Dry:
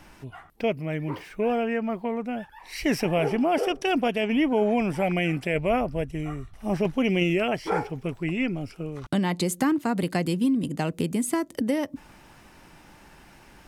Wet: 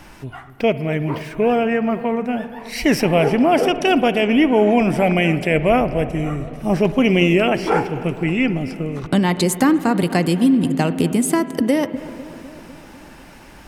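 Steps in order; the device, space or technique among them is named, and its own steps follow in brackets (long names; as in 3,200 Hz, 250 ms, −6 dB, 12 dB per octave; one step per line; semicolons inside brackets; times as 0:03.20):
dub delay into a spring reverb (feedback echo with a low-pass in the loop 250 ms, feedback 71%, low-pass 1,600 Hz, level −16.5 dB; spring reverb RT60 2.6 s, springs 53 ms, chirp 60 ms, DRR 13.5 dB)
level +8 dB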